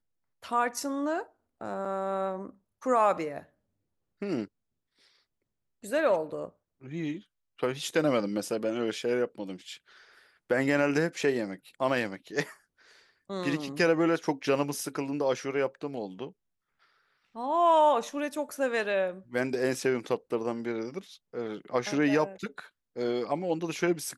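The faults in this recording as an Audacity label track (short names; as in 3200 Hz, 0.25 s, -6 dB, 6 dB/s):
1.850000	1.860000	gap 5.1 ms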